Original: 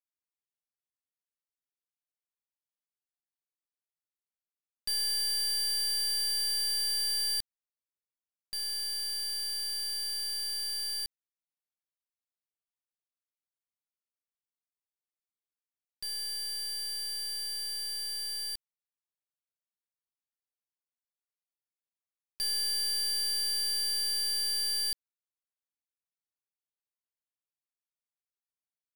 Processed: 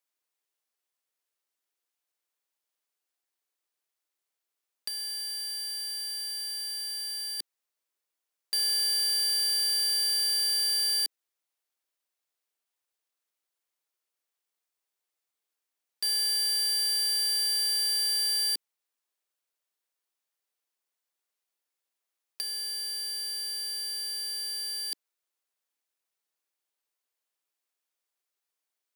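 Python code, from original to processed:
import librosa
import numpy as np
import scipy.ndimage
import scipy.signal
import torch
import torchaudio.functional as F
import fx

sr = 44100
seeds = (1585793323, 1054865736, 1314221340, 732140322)

y = scipy.signal.sosfilt(scipy.signal.butter(4, 310.0, 'highpass', fs=sr, output='sos'), x)
y = fx.over_compress(y, sr, threshold_db=-35.0, ratio=-0.5)
y = F.gain(torch.from_numpy(y), 6.0).numpy()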